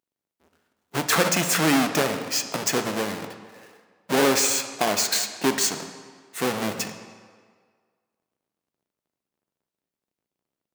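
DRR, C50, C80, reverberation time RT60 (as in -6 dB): 7.0 dB, 9.0 dB, 10.0 dB, 1.8 s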